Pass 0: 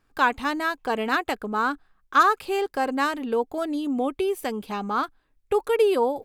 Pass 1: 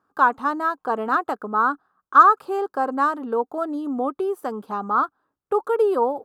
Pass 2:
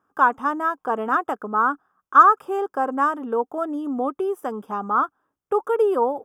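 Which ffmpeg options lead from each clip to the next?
-af "highpass=180,highshelf=f=1700:t=q:w=3:g=-9.5"
-af "asuperstop=centerf=4200:order=8:qfactor=3.4"

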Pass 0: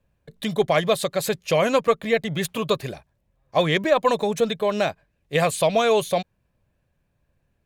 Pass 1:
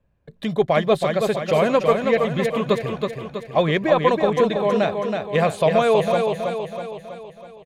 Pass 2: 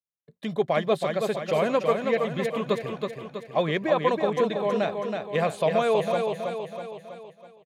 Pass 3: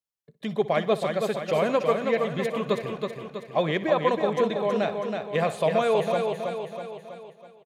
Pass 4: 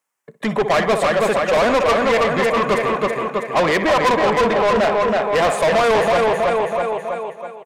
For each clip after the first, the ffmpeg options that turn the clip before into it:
-filter_complex "[0:a]lowpass=f=1900:p=1,asplit=2[s0][s1];[s1]aecho=0:1:324|648|972|1296|1620|1944|2268:0.562|0.298|0.158|0.0837|0.0444|0.0235|0.0125[s2];[s0][s2]amix=inputs=2:normalize=0,volume=1.26"
-af "agate=range=0.0224:threshold=0.0141:ratio=3:detection=peak,highpass=140,volume=0.531"
-af "aecho=1:1:62|124|186|248|310|372:0.141|0.0833|0.0492|0.029|0.0171|0.0101"
-filter_complex "[0:a]equalizer=f=125:t=o:w=1:g=4,equalizer=f=250:t=o:w=1:g=7,equalizer=f=500:t=o:w=1:g=3,equalizer=f=1000:t=o:w=1:g=8,equalizer=f=2000:t=o:w=1:g=6,equalizer=f=4000:t=o:w=1:g=-10,equalizer=f=8000:t=o:w=1:g=6,asplit=2[s0][s1];[s1]highpass=f=720:p=1,volume=25.1,asoftclip=type=tanh:threshold=0.841[s2];[s0][s2]amix=inputs=2:normalize=0,lowpass=f=7100:p=1,volume=0.501,volume=0.447"

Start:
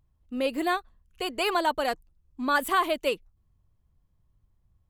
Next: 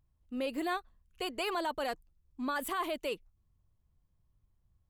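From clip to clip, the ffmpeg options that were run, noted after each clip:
-af "alimiter=limit=0.0944:level=0:latency=1:release=24,volume=0.562"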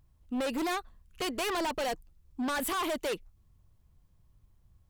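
-af "aeval=exprs='0.0531*(cos(1*acos(clip(val(0)/0.0531,-1,1)))-cos(1*PI/2))+0.0188*(cos(5*acos(clip(val(0)/0.0531,-1,1)))-cos(5*PI/2))':c=same"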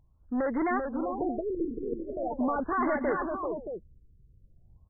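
-filter_complex "[0:a]dynaudnorm=f=200:g=3:m=1.5,asplit=2[s0][s1];[s1]aecho=0:1:390|528|625:0.562|0.126|0.422[s2];[s0][s2]amix=inputs=2:normalize=0,afftfilt=real='re*lt(b*sr/1024,490*pow(2200/490,0.5+0.5*sin(2*PI*0.42*pts/sr)))':imag='im*lt(b*sr/1024,490*pow(2200/490,0.5+0.5*sin(2*PI*0.42*pts/sr)))':win_size=1024:overlap=0.75"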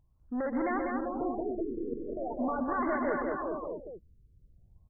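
-af "aecho=1:1:125.4|198.3:0.316|0.631,volume=0.631"

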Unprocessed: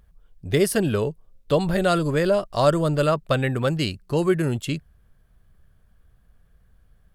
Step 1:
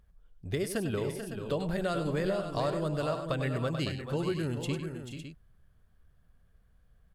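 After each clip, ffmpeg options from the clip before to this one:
-af "highshelf=f=10000:g=-4,acompressor=threshold=0.0891:ratio=6,aecho=1:1:99|437|474|557:0.316|0.355|0.188|0.282,volume=0.447"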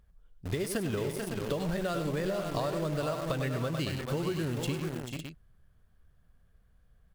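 -filter_complex "[0:a]asplit=2[s0][s1];[s1]acrusher=bits=5:mix=0:aa=0.000001,volume=0.562[s2];[s0][s2]amix=inputs=2:normalize=0,acompressor=threshold=0.0398:ratio=6"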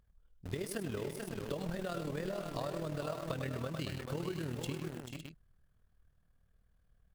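-af "tremolo=f=39:d=0.621,volume=0.631"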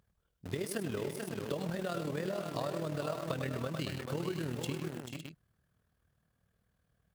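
-af "highpass=100,volume=1.33"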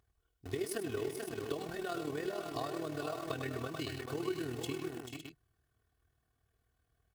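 -af "aecho=1:1:2.7:0.77,volume=0.708"

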